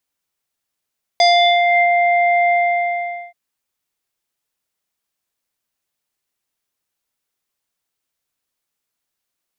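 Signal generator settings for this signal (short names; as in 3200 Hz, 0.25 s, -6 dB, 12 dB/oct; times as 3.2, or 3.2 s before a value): synth note square F5 24 dB/oct, low-pass 1900 Hz, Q 3.1, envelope 1.5 oct, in 0.67 s, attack 1.7 ms, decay 0.44 s, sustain -4 dB, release 0.82 s, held 1.31 s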